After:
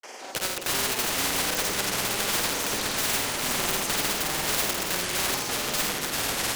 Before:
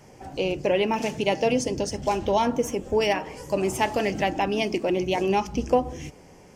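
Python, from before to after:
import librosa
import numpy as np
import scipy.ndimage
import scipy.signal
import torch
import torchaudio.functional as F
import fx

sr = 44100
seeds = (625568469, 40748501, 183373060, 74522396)

p1 = scipy.signal.sosfilt(scipy.signal.butter(4, 480.0, 'highpass', fs=sr, output='sos'), x)
p2 = fx.high_shelf(p1, sr, hz=6300.0, db=-5.5)
p3 = (np.mod(10.0 ** (25.5 / 20.0) * p2 + 1.0, 2.0) - 1.0) / 10.0 ** (25.5 / 20.0)
p4 = fx.echo_pitch(p3, sr, ms=174, semitones=-6, count=3, db_per_echo=-3.0)
p5 = fx.granulator(p4, sr, seeds[0], grain_ms=100.0, per_s=20.0, spray_ms=100.0, spread_st=0)
p6 = p5 + fx.echo_multitap(p5, sr, ms=(50, 83, 273, 401), db=(-6.5, -9.5, -15.0, -12.5), dry=0)
p7 = fx.spectral_comp(p6, sr, ratio=2.0)
y = F.gain(torch.from_numpy(p7), 6.0).numpy()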